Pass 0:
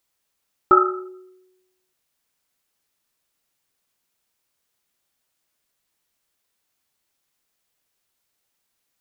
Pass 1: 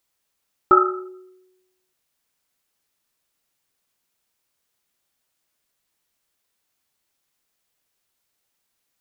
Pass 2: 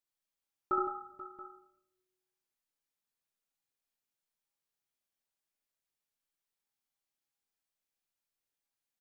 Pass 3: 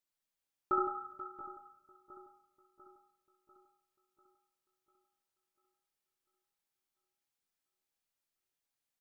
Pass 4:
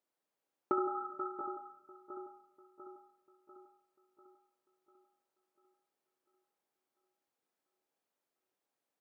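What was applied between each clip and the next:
no processing that can be heard
tuned comb filter 820 Hz, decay 0.4 s, mix 70%; multi-tap delay 70/163/483/678 ms −4/−10.5/−15/−17 dB; rectangular room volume 230 cubic metres, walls mixed, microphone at 0.3 metres; level −8 dB
echo with a time of its own for lows and highs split 1,200 Hz, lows 695 ms, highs 242 ms, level −15 dB
high-pass filter 340 Hz 12 dB per octave; tilt shelving filter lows +9.5 dB, about 1,200 Hz; downward compressor 6 to 1, threshold −35 dBFS, peak gain reduction 9.5 dB; level +5 dB

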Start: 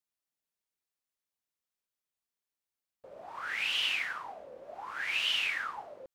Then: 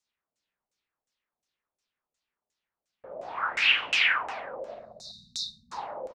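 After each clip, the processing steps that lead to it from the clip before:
time-frequency box erased 0:04.74–0:05.72, 240–3,600 Hz
reverse bouncing-ball delay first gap 50 ms, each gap 1.2×, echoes 5
auto-filter low-pass saw down 2.8 Hz 520–7,600 Hz
level +4.5 dB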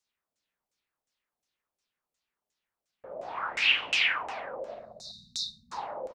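dynamic equaliser 1,500 Hz, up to −6 dB, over −37 dBFS, Q 1.4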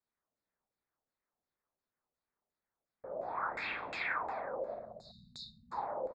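moving average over 15 samples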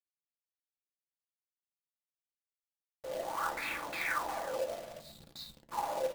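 log-companded quantiser 4 bits
convolution reverb RT60 0.30 s, pre-delay 3 ms, DRR 5.5 dB

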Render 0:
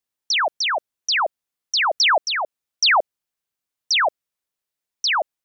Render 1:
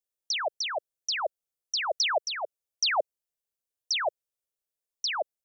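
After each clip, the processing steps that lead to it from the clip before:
octave-band graphic EQ 125/250/500/1,000/2,000/4,000 Hz −4/−10/+5/−8/−7/−4 dB
level −4 dB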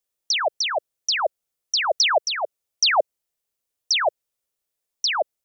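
notch filter 1,600 Hz, Q 25
level +7.5 dB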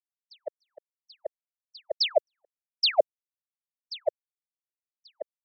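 noise gate −17 dBFS, range −58 dB

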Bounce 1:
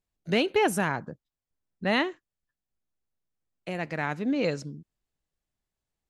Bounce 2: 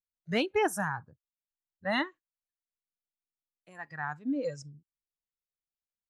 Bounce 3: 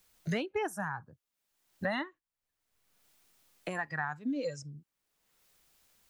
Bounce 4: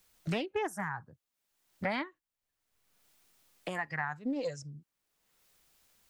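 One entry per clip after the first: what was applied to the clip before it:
noise reduction from a noise print of the clip's start 18 dB; level −3.5 dB
multiband upward and downward compressor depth 100%; level −2.5 dB
highs frequency-modulated by the lows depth 0.36 ms

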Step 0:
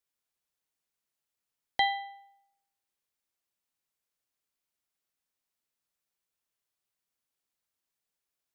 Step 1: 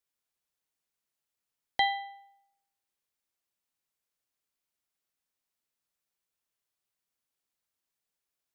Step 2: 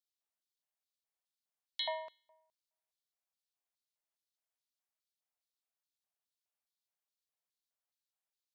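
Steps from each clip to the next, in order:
no processing that can be heard
ring modulation 160 Hz; auto-filter high-pass square 2.4 Hz 680–3,900 Hz; level −6.5 dB

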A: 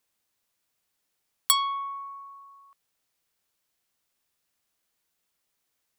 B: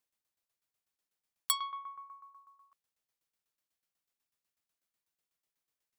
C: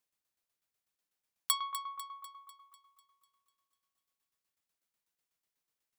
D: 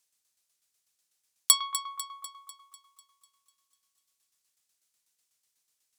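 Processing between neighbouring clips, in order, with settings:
shaped tremolo saw down 8.1 Hz, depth 80%; level −7 dB
feedback echo with a high-pass in the loop 248 ms, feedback 55%, high-pass 570 Hz, level −12.5 dB
parametric band 7,400 Hz +14.5 dB 2.5 octaves

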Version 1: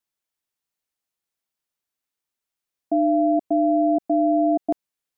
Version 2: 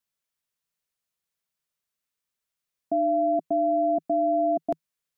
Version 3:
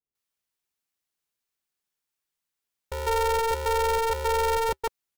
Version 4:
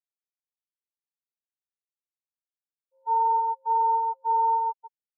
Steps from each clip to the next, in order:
thirty-one-band graphic EQ 160 Hz +5 dB, 315 Hz −10 dB, 800 Hz −5 dB
multiband delay without the direct sound lows, highs 150 ms, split 450 Hz; ring modulator with a square carrier 230 Hz
band-pass filter 520–2,400 Hz; every bin expanded away from the loudest bin 4 to 1

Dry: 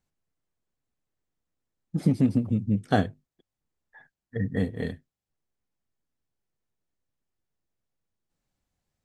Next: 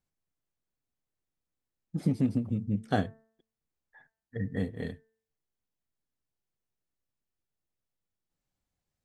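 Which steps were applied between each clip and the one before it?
hum removal 222.6 Hz, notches 9
level −5 dB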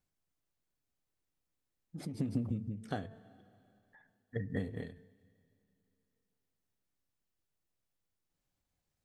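coupled-rooms reverb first 0.24 s, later 2.9 s, from −20 dB, DRR 18 dB
every ending faded ahead of time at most 100 dB per second
level +1 dB

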